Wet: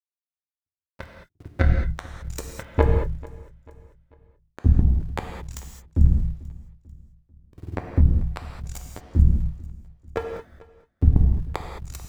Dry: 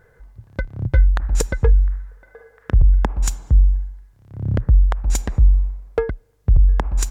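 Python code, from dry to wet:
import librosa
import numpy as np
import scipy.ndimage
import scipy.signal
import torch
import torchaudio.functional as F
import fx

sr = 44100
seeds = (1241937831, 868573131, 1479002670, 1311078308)

p1 = fx.stretch_grains(x, sr, factor=1.7, grain_ms=53.0)
p2 = fx.dereverb_blind(p1, sr, rt60_s=0.88)
p3 = np.where(np.abs(p2) >= 10.0 ** (-19.5 / 20.0), p2, 0.0)
p4 = p2 + (p3 * librosa.db_to_amplitude(-3.0))
p5 = fx.power_curve(p4, sr, exponent=3.0)
p6 = fx.echo_feedback(p5, sr, ms=442, feedback_pct=43, wet_db=-21.5)
p7 = fx.rev_gated(p6, sr, seeds[0], gate_ms=240, shape='flat', drr_db=2.5)
y = p7 * librosa.db_to_amplitude(-1.0)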